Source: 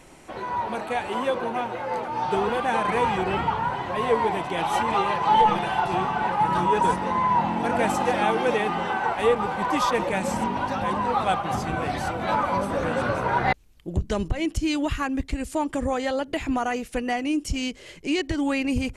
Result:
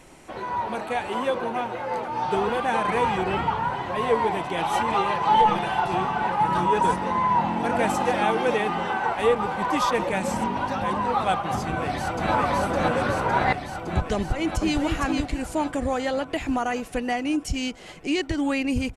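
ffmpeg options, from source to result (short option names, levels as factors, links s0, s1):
-filter_complex "[0:a]asplit=2[s0][s1];[s1]afade=t=in:st=11.61:d=0.01,afade=t=out:st=12.32:d=0.01,aecho=0:1:560|1120|1680|2240|2800|3360|3920|4480|5040|5600|6160|6720:0.944061|0.708046|0.531034|0.398276|0.298707|0.22403|0.168023|0.126017|0.0945127|0.0708845|0.0531634|0.0398725[s2];[s0][s2]amix=inputs=2:normalize=0,asplit=2[s3][s4];[s4]afade=t=in:st=14.15:d=0.01,afade=t=out:st=14.79:d=0.01,aecho=0:1:460|920|1380:0.595662|0.148916|0.0372289[s5];[s3][s5]amix=inputs=2:normalize=0"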